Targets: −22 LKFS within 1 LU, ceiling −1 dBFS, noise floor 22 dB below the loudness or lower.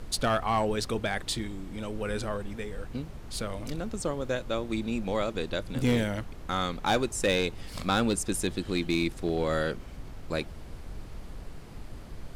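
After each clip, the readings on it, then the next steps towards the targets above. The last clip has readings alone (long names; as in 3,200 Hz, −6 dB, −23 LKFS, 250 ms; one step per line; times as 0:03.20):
share of clipped samples 0.3%; peaks flattened at −18.5 dBFS; background noise floor −43 dBFS; target noise floor −53 dBFS; integrated loudness −30.5 LKFS; sample peak −18.5 dBFS; target loudness −22.0 LKFS
→ clipped peaks rebuilt −18.5 dBFS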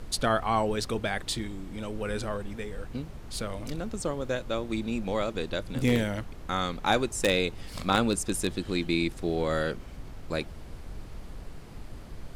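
share of clipped samples 0.0%; background noise floor −43 dBFS; target noise floor −52 dBFS
→ noise reduction from a noise print 9 dB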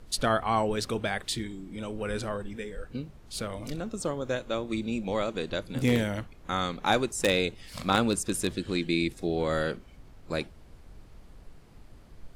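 background noise floor −52 dBFS; integrated loudness −30.0 LKFS; sample peak −9.5 dBFS; target loudness −22.0 LKFS
→ level +8 dB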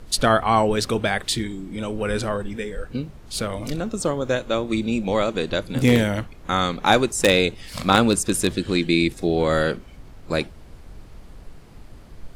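integrated loudness −22.0 LKFS; sample peak −1.5 dBFS; background noise floor −44 dBFS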